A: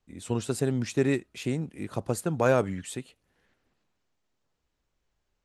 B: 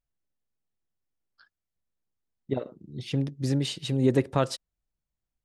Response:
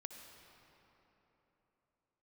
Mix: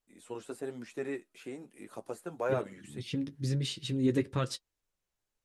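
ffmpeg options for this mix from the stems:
-filter_complex "[0:a]highpass=300,acrossover=split=2500[a][b];[b]acompressor=threshold=-53dB:ratio=4:attack=1:release=60[c];[a][c]amix=inputs=2:normalize=0,equalizer=f=11k:w=0.7:g=10.5,volume=-5dB[d];[1:a]equalizer=f=720:t=o:w=0.85:g=-12.5,volume=0dB[e];[d][e]amix=inputs=2:normalize=0,flanger=delay=8.7:depth=2.3:regen=-34:speed=1.1:shape=sinusoidal"

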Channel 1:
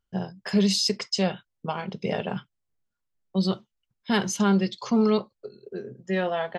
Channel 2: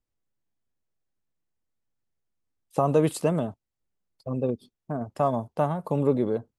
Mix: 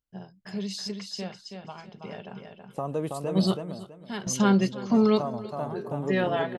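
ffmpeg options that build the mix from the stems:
-filter_complex "[0:a]bandreject=f=500:w=12,volume=0.5dB,asplit=2[a][b];[b]volume=-18dB[c];[1:a]volume=-9dB,asplit=3[d][e][f];[e]volume=-3.5dB[g];[f]apad=whole_len=290195[h];[a][h]sidechaingate=range=-12dB:threshold=-54dB:ratio=16:detection=peak[i];[c][g]amix=inputs=2:normalize=0,aecho=0:1:326|652|978|1304:1|0.24|0.0576|0.0138[j];[i][d][j]amix=inputs=3:normalize=0"

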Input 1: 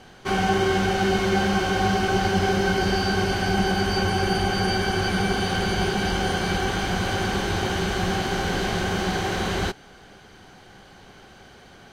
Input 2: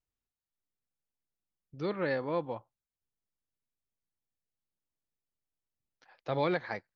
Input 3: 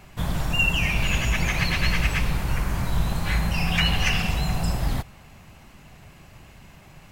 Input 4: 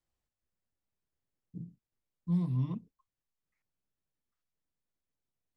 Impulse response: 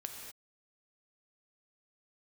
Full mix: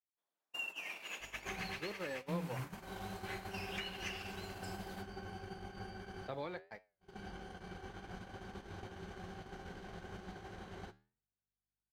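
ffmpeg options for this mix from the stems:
-filter_complex "[0:a]aeval=exprs='val(0)+0.0112*(sin(2*PI*50*n/s)+sin(2*PI*2*50*n/s)/2+sin(2*PI*3*50*n/s)/3+sin(2*PI*4*50*n/s)/4+sin(2*PI*5*50*n/s)/5)':c=same,acrossover=split=94|2000[a][b][c];[a]acompressor=threshold=-35dB:ratio=4[d];[b]acompressor=threshold=-28dB:ratio=4[e];[c]acompressor=threshold=-45dB:ratio=4[f];[d][e][f]amix=inputs=3:normalize=0,adelay=1200,volume=-8.5dB,asplit=2[g][h];[h]volume=-20.5dB[i];[1:a]lowshelf=f=110:g=-8,volume=0dB,asplit=2[j][k];[2:a]highpass=f=330:w=0.5412,highpass=f=330:w=1.3066,volume=-9dB,asplit=2[l][m];[m]volume=-21dB[n];[3:a]flanger=delay=16.5:depth=2:speed=0.65,volume=-4dB[o];[k]apad=whole_len=578688[p];[g][p]sidechaincompress=threshold=-49dB:ratio=20:attack=11:release=299[q];[q][j][l]amix=inputs=3:normalize=0,acompressor=threshold=-33dB:ratio=16,volume=0dB[r];[i][n]amix=inputs=2:normalize=0,aecho=0:1:351:1[s];[o][r][s]amix=inputs=3:normalize=0,agate=range=-46dB:threshold=-37dB:ratio=16:detection=peak,flanger=delay=9.9:depth=9.9:regen=-81:speed=0.44:shape=triangular"

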